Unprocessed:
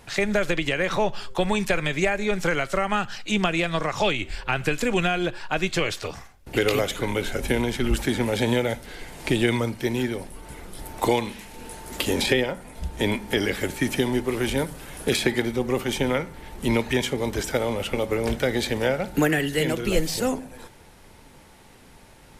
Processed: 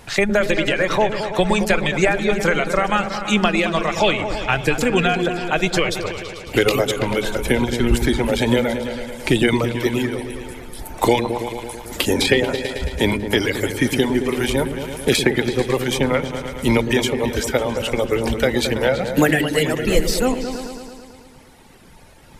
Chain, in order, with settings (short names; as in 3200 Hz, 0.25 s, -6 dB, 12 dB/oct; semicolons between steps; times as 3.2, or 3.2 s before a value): reverb removal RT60 2 s; repeats that get brighter 0.11 s, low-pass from 400 Hz, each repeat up 2 oct, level -6 dB; gain +6 dB